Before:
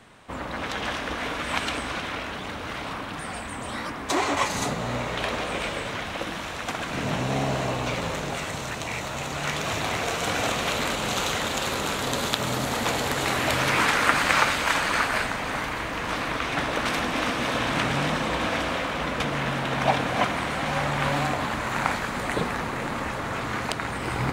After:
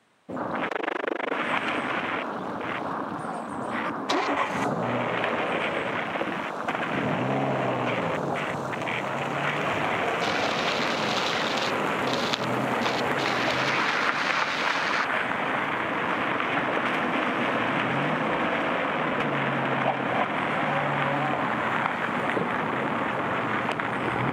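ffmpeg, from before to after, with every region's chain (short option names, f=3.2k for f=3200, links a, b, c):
-filter_complex "[0:a]asettb=1/sr,asplit=3[a][b][c];[a]atrim=end=0.684[d];[b]atrim=start=0.68:end=1.33,asetpts=PTS-STARTPTS,afade=t=in:d=0.004:c=qsin,afade=t=out:st=0.646:d=0.004:c=qsin,highpass=f=370:t=q:w=2.9,tremolo=f=25:d=1[e];[c]atrim=start=1.326[f];[d][e]acrossfade=d=0.004:c1=hsin:c2=qsin[g];[g][f]acrossfade=d=0.004:c1=qsin:c2=hsin,highpass=160,afwtdn=0.0251,acompressor=threshold=-27dB:ratio=5,volume=5dB"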